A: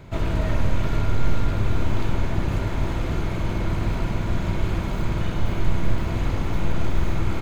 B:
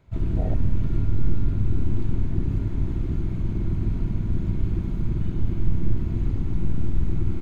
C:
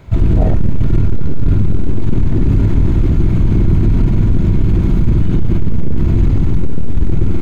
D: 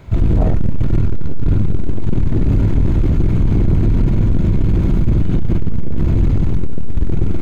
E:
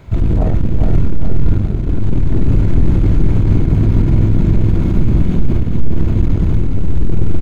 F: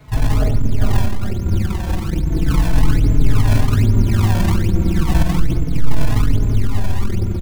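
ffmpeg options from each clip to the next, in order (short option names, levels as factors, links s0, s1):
-af "afwtdn=0.0891"
-af "aeval=exprs='0.447*sin(PI/2*2.24*val(0)/0.447)':c=same,alimiter=limit=0.224:level=0:latency=1:release=40,volume=2.51"
-af "asoftclip=type=tanh:threshold=0.473"
-af "aecho=1:1:413|826|1239|1652|2065|2478:0.596|0.292|0.143|0.0701|0.0343|0.0168"
-filter_complex "[0:a]acrossover=split=320|930[s0][s1][s2];[s0]acrusher=samples=30:mix=1:aa=0.000001:lfo=1:lforange=48:lforate=1.2[s3];[s3][s1][s2]amix=inputs=3:normalize=0,asplit=2[s4][s5];[s5]adelay=4.2,afreqshift=-0.34[s6];[s4][s6]amix=inputs=2:normalize=1"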